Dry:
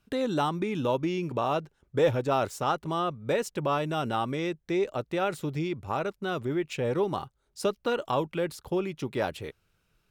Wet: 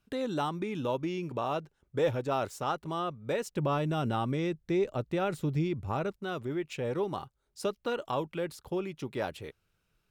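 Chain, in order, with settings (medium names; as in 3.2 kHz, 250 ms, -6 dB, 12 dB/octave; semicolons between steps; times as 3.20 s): 3.56–6.16 s: bass shelf 260 Hz +10 dB; trim -4.5 dB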